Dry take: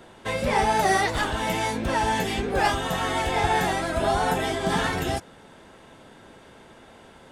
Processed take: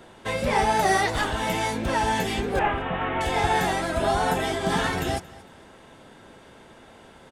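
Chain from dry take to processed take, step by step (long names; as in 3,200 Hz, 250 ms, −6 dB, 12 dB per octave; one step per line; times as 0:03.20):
0:02.59–0:03.21: variable-slope delta modulation 16 kbit/s
on a send: repeating echo 227 ms, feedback 31%, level −20.5 dB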